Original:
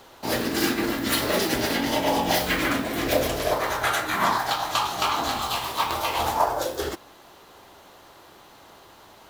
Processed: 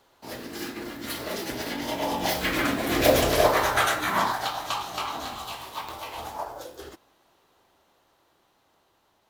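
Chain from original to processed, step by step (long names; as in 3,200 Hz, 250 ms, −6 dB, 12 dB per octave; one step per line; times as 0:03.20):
source passing by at 0:03.35, 8 m/s, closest 3.6 metres
level +4.5 dB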